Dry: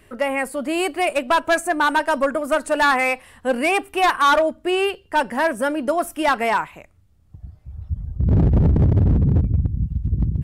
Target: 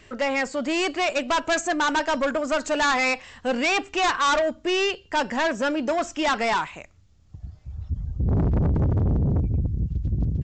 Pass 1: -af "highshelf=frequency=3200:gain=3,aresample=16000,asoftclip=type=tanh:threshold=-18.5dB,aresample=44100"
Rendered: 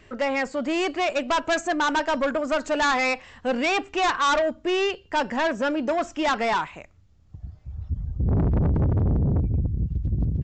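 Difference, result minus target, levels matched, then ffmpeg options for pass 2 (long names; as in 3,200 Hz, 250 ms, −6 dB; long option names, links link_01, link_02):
8,000 Hz band −3.5 dB
-af "highshelf=frequency=3200:gain=11,aresample=16000,asoftclip=type=tanh:threshold=-18.5dB,aresample=44100"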